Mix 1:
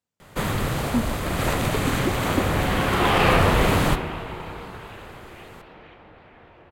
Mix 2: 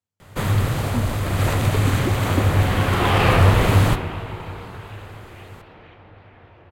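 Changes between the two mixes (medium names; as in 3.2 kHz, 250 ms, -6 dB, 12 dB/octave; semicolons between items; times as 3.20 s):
speech -4.5 dB; master: add peaking EQ 100 Hz +13.5 dB 0.4 oct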